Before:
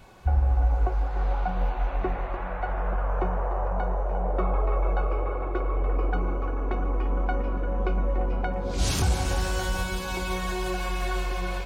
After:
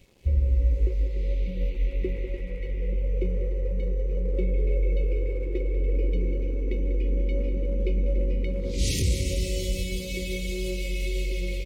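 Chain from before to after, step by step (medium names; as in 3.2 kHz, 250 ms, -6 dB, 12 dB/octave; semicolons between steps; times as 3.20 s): FFT band-reject 560–1900 Hz; crossover distortion -55.5 dBFS; delay 194 ms -12.5 dB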